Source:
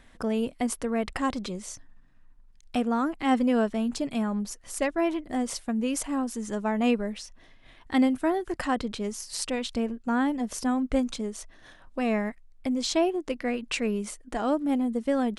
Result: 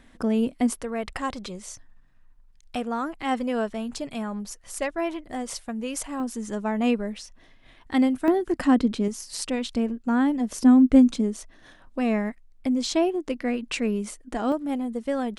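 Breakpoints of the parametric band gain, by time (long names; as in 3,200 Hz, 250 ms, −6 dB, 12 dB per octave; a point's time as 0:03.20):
parametric band 260 Hz 1 octave
+6.5 dB
from 0:00.78 −5 dB
from 0:06.20 +1.5 dB
from 0:08.28 +12 dB
from 0:09.08 +4.5 dB
from 0:10.59 +12 dB
from 0:11.37 +4 dB
from 0:14.52 −2.5 dB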